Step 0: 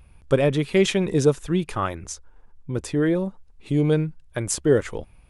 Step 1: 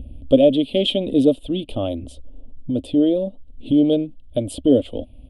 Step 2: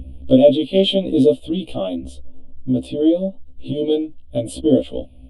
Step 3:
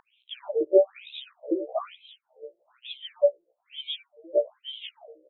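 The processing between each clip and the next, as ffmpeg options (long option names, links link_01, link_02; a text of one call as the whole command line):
ffmpeg -i in.wav -filter_complex "[0:a]firequalizer=gain_entry='entry(110,0);entry(160,-12);entry(260,14);entry(380,-5);entry(600,11);entry(900,-13);entry(1700,-28);entry(3100,10);entry(6100,-24);entry(8900,-7)':delay=0.05:min_phase=1,acrossover=split=410|2400[link_01][link_02][link_03];[link_01]acompressor=mode=upward:threshold=-21dB:ratio=2.5[link_04];[link_04][link_02][link_03]amix=inputs=3:normalize=0" out.wav
ffmpeg -i in.wav -af "afftfilt=real='re*1.73*eq(mod(b,3),0)':imag='im*1.73*eq(mod(b,3),0)':win_size=2048:overlap=0.75,volume=3.5dB" out.wav
ffmpeg -i in.wav -filter_complex "[0:a]aphaser=in_gain=1:out_gain=1:delay=3.3:decay=0.46:speed=0.7:type=triangular,asplit=2[link_01][link_02];[link_02]adelay=1166,volume=-28dB,highshelf=frequency=4000:gain=-26.2[link_03];[link_01][link_03]amix=inputs=2:normalize=0,afftfilt=real='re*between(b*sr/1024,440*pow(3000/440,0.5+0.5*sin(2*PI*1.1*pts/sr))/1.41,440*pow(3000/440,0.5+0.5*sin(2*PI*1.1*pts/sr))*1.41)':imag='im*between(b*sr/1024,440*pow(3000/440,0.5+0.5*sin(2*PI*1.1*pts/sr))/1.41,440*pow(3000/440,0.5+0.5*sin(2*PI*1.1*pts/sr))*1.41)':win_size=1024:overlap=0.75,volume=2dB" out.wav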